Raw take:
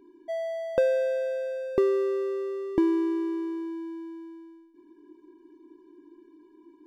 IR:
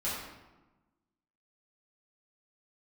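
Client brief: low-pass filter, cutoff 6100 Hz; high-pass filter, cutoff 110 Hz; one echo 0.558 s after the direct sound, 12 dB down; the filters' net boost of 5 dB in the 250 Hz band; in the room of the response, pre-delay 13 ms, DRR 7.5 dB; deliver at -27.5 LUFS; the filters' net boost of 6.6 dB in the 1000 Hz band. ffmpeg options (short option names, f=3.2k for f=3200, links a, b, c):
-filter_complex "[0:a]highpass=110,lowpass=6.1k,equalizer=f=250:t=o:g=7.5,equalizer=f=1k:t=o:g=8,aecho=1:1:558:0.251,asplit=2[a][b];[1:a]atrim=start_sample=2205,adelay=13[c];[b][c]afir=irnorm=-1:irlink=0,volume=-13.5dB[d];[a][d]amix=inputs=2:normalize=0,volume=-4dB"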